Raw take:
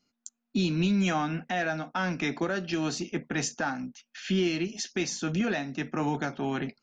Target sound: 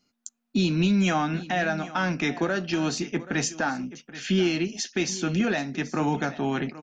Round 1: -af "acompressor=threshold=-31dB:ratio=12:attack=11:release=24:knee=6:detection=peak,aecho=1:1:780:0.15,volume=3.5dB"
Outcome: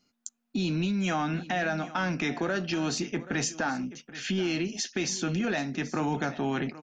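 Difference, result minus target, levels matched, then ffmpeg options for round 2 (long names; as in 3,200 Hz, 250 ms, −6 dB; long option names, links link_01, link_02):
downward compressor: peak gain reduction +7.5 dB
-af "aecho=1:1:780:0.15,volume=3.5dB"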